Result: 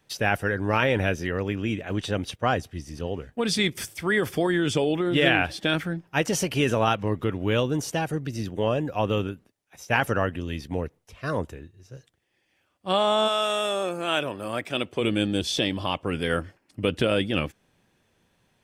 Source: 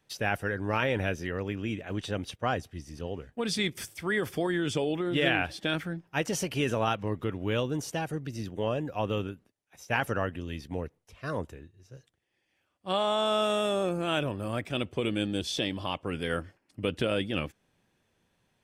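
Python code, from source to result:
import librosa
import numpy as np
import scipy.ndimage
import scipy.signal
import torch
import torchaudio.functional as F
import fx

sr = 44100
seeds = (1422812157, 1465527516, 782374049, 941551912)

y = fx.highpass(x, sr, hz=fx.line((13.27, 1000.0), (15.0, 270.0)), slope=6, at=(13.27, 15.0), fade=0.02)
y = F.gain(torch.from_numpy(y), 5.5).numpy()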